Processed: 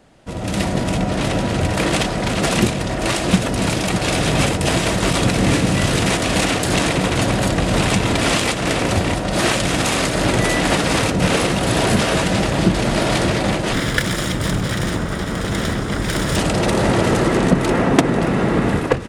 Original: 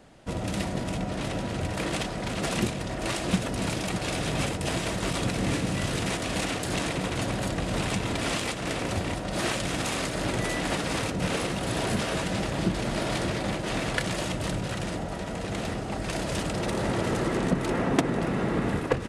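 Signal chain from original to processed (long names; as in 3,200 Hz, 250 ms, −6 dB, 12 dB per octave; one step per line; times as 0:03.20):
0:13.73–0:16.36: lower of the sound and its delayed copy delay 0.56 ms
automatic gain control gain up to 10 dB
level +1.5 dB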